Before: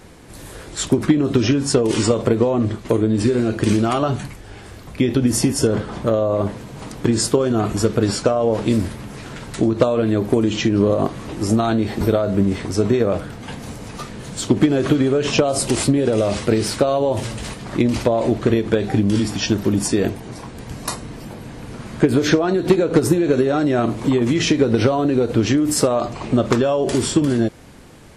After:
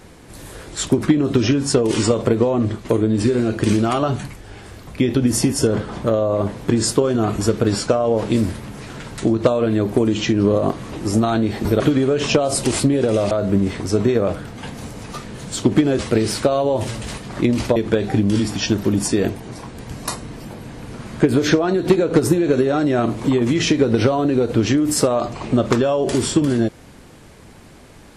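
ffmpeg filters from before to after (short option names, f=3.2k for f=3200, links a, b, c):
-filter_complex "[0:a]asplit=6[a][b][c][d][e][f];[a]atrim=end=6.592[g];[b]atrim=start=6.948:end=12.162[h];[c]atrim=start=14.838:end=16.352[i];[d]atrim=start=12.158:end=14.842[j];[e]atrim=start=16.348:end=18.122[k];[f]atrim=start=18.558[l];[g][h]acrossfade=d=0.004:c1=hsin:c2=hsin[m];[m][i]acrossfade=d=0.004:c1=hsin:c2=hsin[n];[n][j]acrossfade=d=0.004:c1=hsin:c2=hsin[o];[o][k]acrossfade=d=0.004:c1=hsin:c2=hsin[p];[p][l]acrossfade=d=0.004:c1=hsin:c2=hsin"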